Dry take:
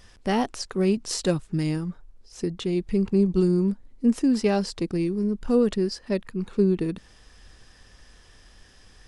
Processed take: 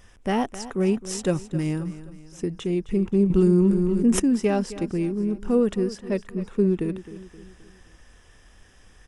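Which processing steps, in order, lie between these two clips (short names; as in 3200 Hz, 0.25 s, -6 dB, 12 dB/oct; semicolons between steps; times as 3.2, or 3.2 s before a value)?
bell 4400 Hz -14 dB 0.36 oct; on a send: feedback echo 0.263 s, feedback 46%, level -15 dB; 3.3–4.2 on the sum: fast leveller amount 70%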